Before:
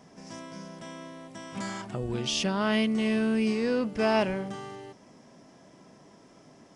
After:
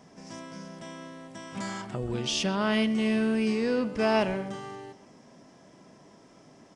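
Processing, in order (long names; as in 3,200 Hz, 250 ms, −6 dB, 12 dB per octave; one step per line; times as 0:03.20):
far-end echo of a speakerphone 130 ms, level −13 dB
downsampling to 22,050 Hz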